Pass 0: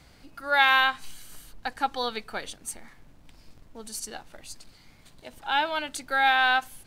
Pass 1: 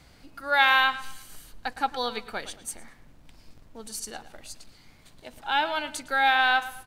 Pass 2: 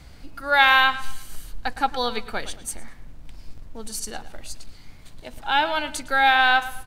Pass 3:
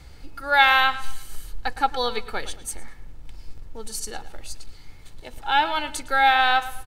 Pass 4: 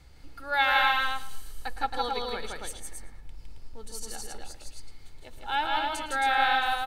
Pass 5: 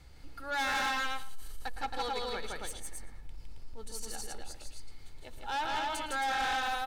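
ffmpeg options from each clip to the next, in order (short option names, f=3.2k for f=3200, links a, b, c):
-filter_complex "[0:a]asplit=2[a][b];[b]adelay=111,lowpass=f=3.9k:p=1,volume=-14dB,asplit=2[c][d];[d]adelay=111,lowpass=f=3.9k:p=1,volume=0.37,asplit=2[e][f];[f]adelay=111,lowpass=f=3.9k:p=1,volume=0.37,asplit=2[g][h];[h]adelay=111,lowpass=f=3.9k:p=1,volume=0.37[i];[a][c][e][g][i]amix=inputs=5:normalize=0"
-af "lowshelf=f=88:g=11.5,volume=4dB"
-af "aecho=1:1:2.3:0.36,volume=-1dB"
-af "aecho=1:1:160.3|271.1:0.794|0.631,volume=-8.5dB"
-af "asoftclip=type=tanh:threshold=-27.5dB,volume=-1dB"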